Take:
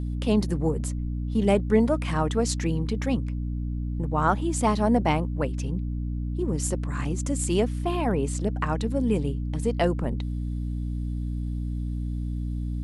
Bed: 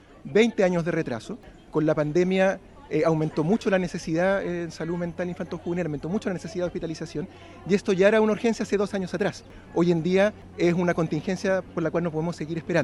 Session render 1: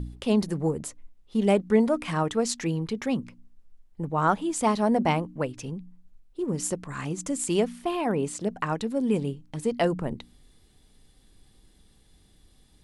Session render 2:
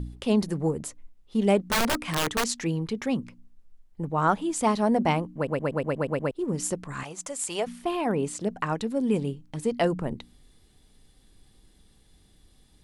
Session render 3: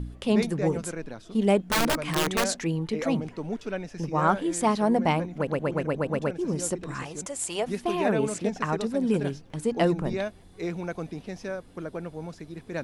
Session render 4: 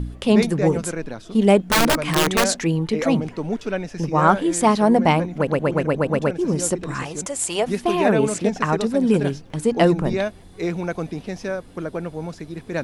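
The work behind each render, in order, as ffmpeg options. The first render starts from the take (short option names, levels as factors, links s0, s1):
-af "bandreject=f=60:t=h:w=4,bandreject=f=120:t=h:w=4,bandreject=f=180:t=h:w=4,bandreject=f=240:t=h:w=4,bandreject=f=300:t=h:w=4"
-filter_complex "[0:a]asettb=1/sr,asplit=3[s0][s1][s2];[s0]atrim=end=1.694[s3];[s1]atrim=start=1.69:end=2.49,asetpts=PTS-STARTPTS,afade=t=in:d=0.004:c=qsin,afade=t=out:st=0.796:d=0.004:c=qsin,aeval=exprs='(mod(8.91*val(0)+1,2)-1)/8.91':c=same[s4];[s2]atrim=start=2.486[s5];[s3][s4]acrossfade=d=0.004:c1=hsin:c2=qsin[s6];[s6][s5]acrossfade=d=0.004:c1=qsin:c2=hsin,asettb=1/sr,asplit=3[s7][s8][s9];[s7]atrim=end=7.034[s10];[s8]atrim=start=7.03:end=7.67,asetpts=PTS-STARTPTS,afade=t=in:d=0.004:c=qsin,afade=t=out:st=0.636:d=0.004:c=qsin,lowshelf=f=440:t=q:w=1.5:g=-12[s11];[s9]atrim=start=7.666[s12];[s10][s11]acrossfade=d=0.004:c1=hsin:c2=qsin[s13];[s13][s12]acrossfade=d=0.004:c1=qsin:c2=hsin,asplit=9[s14][s15][s16][s17][s18][s19][s20][s21][s22];[s14]atrim=end=5.472[s23];[s15]atrim=start=5.348:end=5.472[s24];[s16]atrim=start=5.348:end=5.472[s25];[s17]atrim=start=5.348:end=5.472[s26];[s18]atrim=start=5.348:end=5.472[s27];[s19]atrim=start=5.348:end=5.472[s28];[s20]atrim=start=5.348:end=5.472[s29];[s21]atrim=start=5.348:end=5.472[s30];[s22]atrim=start=6.308[s31];[s23][s24]acrossfade=d=0.004:c1=hsin:c2=hsin[s32];[s32][s25]acrossfade=d=0.004:c1=hsin:c2=hsin[s33];[s33][s26]acrossfade=d=0.004:c1=hsin:c2=hsin[s34];[s34][s27]acrossfade=d=0.004:c1=hsin:c2=hsin[s35];[s35][s28]acrossfade=d=0.004:c1=hsin:c2=hsin[s36];[s36][s29]acrossfade=d=0.004:c1=hsin:c2=hsin[s37];[s37][s30]acrossfade=d=0.004:c1=hsin:c2=hsin[s38];[s38][s31]acrossfade=d=0.004:c1=hsin:c2=hsin"
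-filter_complex "[1:a]volume=0.316[s0];[0:a][s0]amix=inputs=2:normalize=0"
-af "volume=2.24"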